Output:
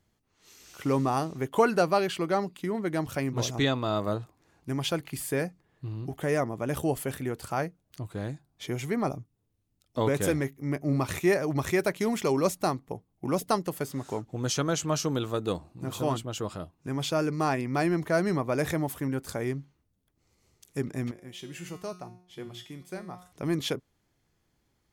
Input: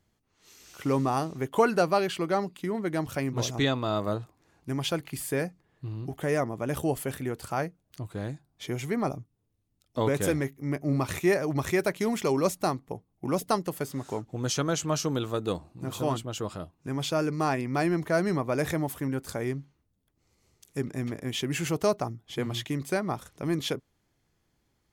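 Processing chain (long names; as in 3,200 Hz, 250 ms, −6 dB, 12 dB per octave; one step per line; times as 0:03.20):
0:21.11–0:23.32: tuned comb filter 180 Hz, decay 0.55 s, harmonics all, mix 80%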